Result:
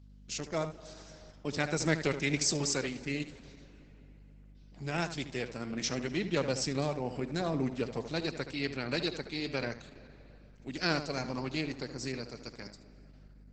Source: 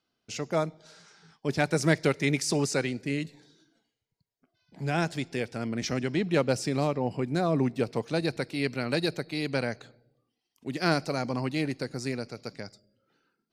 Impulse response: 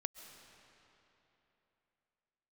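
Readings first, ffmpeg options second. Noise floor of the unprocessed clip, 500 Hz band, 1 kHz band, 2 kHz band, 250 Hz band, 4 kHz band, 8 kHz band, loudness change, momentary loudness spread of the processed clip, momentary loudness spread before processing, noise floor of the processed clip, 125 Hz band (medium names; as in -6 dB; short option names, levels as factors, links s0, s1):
-83 dBFS, -6.0 dB, -6.0 dB, -4.0 dB, -6.0 dB, -1.0 dB, +1.0 dB, -5.0 dB, 16 LU, 11 LU, -55 dBFS, -6.5 dB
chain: -filter_complex "[0:a]highshelf=f=2600:g=9,aeval=exprs='val(0)+0.00447*(sin(2*PI*50*n/s)+sin(2*PI*2*50*n/s)/2+sin(2*PI*3*50*n/s)/3+sin(2*PI*4*50*n/s)/4+sin(2*PI*5*50*n/s)/5)':c=same,asplit=2[s0][s1];[1:a]atrim=start_sample=2205,highshelf=f=2400:g=-5.5,adelay=75[s2];[s1][s2]afir=irnorm=-1:irlink=0,volume=0.447[s3];[s0][s3]amix=inputs=2:normalize=0,volume=0.501" -ar 48000 -c:a libopus -b:a 10k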